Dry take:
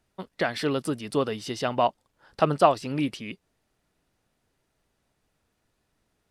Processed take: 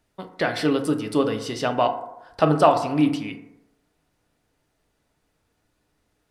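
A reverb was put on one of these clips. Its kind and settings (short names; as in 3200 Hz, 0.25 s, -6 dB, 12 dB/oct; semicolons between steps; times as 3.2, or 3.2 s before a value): FDN reverb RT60 0.93 s, low-frequency decay 0.8×, high-frequency decay 0.35×, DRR 5 dB; gain +2 dB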